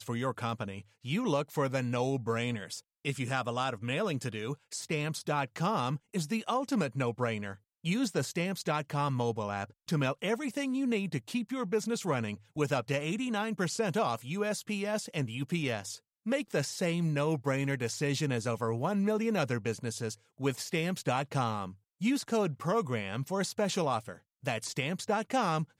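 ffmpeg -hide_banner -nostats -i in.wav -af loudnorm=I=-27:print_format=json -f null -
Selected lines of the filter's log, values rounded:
"input_i" : "-32.8",
"input_tp" : "-16.8",
"input_lra" : "1.5",
"input_thresh" : "-42.9",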